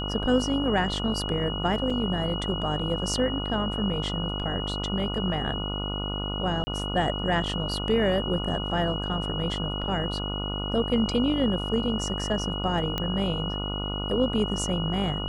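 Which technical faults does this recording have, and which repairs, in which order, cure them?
buzz 50 Hz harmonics 29 -32 dBFS
whine 2.9 kHz -33 dBFS
1.90 s: dropout 4.3 ms
6.64–6.67 s: dropout 30 ms
12.98 s: pop -14 dBFS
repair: de-click; band-stop 2.9 kHz, Q 30; de-hum 50 Hz, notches 29; interpolate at 1.90 s, 4.3 ms; interpolate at 6.64 s, 30 ms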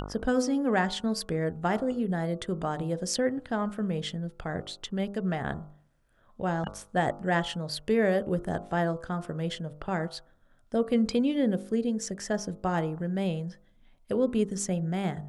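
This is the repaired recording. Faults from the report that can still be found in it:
nothing left

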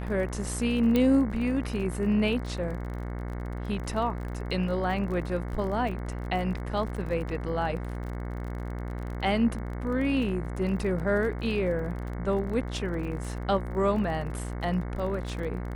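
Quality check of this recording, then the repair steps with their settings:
buzz 60 Hz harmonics 37 -34 dBFS
crackle 32 per s -36 dBFS
0.96 s: pop -13 dBFS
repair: de-click; de-hum 60 Hz, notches 37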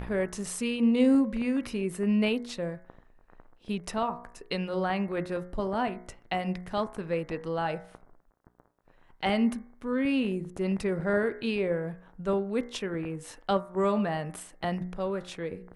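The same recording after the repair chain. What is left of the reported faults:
nothing left

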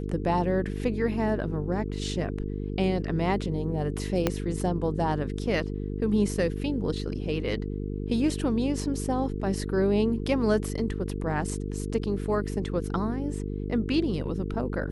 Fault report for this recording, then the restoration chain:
buzz 50 Hz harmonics 9 -32 dBFS
4.27 s: pop -9 dBFS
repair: de-click; de-hum 50 Hz, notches 9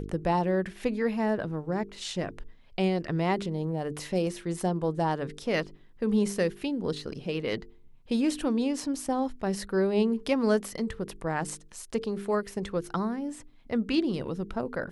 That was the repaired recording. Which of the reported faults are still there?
4.27 s: pop

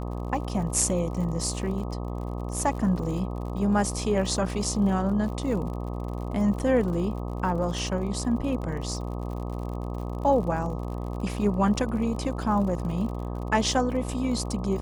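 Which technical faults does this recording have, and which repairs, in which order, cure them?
buzz 60 Hz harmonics 21 -32 dBFS
crackle 59 per s -36 dBFS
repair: de-click; de-hum 60 Hz, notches 21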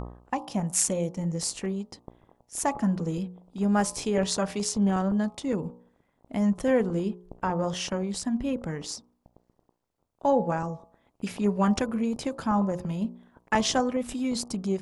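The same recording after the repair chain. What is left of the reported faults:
nothing left

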